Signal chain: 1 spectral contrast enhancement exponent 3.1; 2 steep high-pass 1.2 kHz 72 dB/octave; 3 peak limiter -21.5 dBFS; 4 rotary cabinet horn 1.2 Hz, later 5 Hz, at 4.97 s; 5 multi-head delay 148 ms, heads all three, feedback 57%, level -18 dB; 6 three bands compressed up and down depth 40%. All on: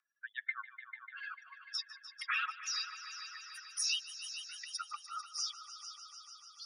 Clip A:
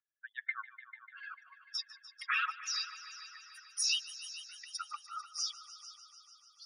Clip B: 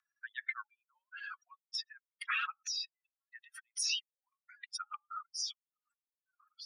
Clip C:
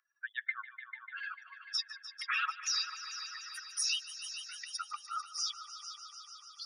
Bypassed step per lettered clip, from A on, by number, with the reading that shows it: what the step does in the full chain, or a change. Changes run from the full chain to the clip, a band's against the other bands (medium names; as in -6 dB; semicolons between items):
6, crest factor change +1.5 dB; 5, momentary loudness spread change +5 LU; 4, loudness change +2.5 LU